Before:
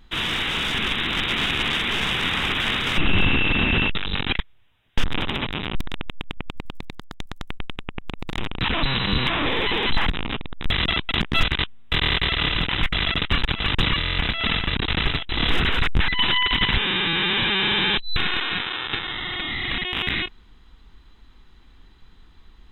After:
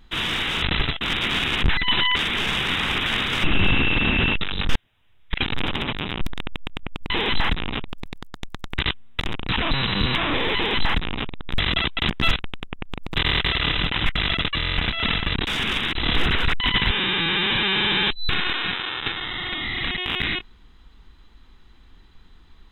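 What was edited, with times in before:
0.62–1.08 swap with 14.88–15.27
4.19–5.08 reverse
7.55–8.32 swap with 11.51–11.93
9.67–10.44 copy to 6.64
13.3–13.94 cut
15.94–16.47 move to 1.7

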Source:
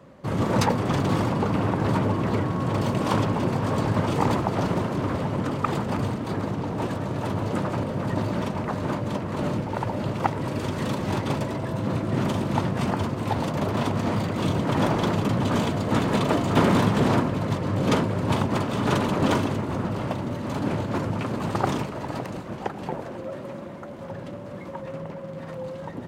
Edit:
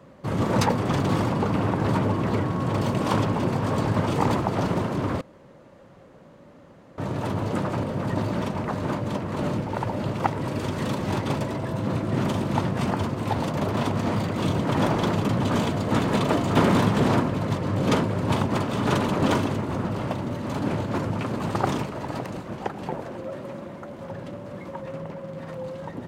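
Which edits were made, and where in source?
5.21–6.98 room tone

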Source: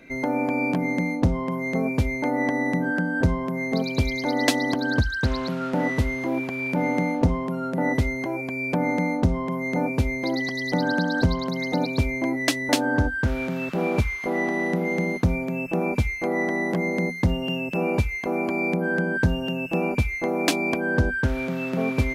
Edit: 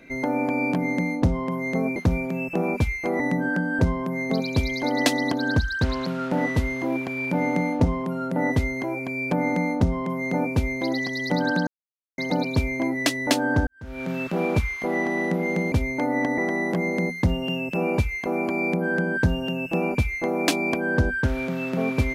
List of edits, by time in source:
1.96–2.62 swap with 15.14–16.38
11.09–11.6 mute
13.09–13.52 fade in quadratic

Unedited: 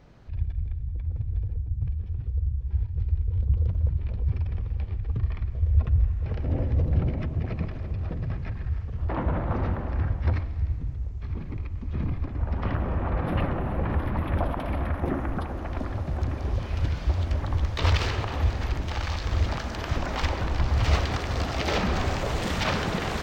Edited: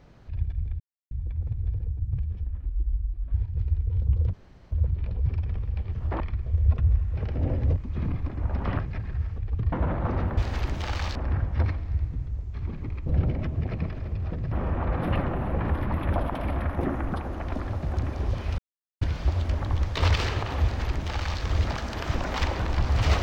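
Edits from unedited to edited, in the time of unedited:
0.8 insert silence 0.31 s
2.12–2.75 speed 69%
3.74 insert room tone 0.38 s
4.95–5.29 swap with 8.9–9.18
6.85–8.31 swap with 11.74–12.77
16.83 insert silence 0.43 s
18.45–19.23 copy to 9.83

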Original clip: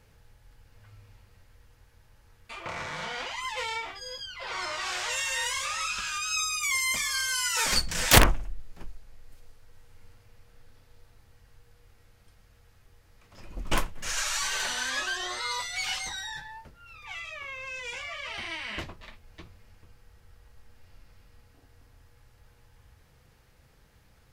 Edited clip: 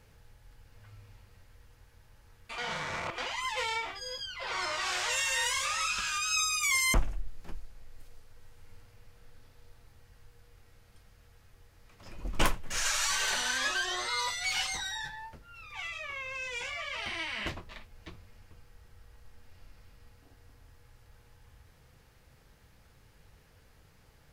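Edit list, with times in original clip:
2.58–3.18 reverse
6.94–8.26 cut

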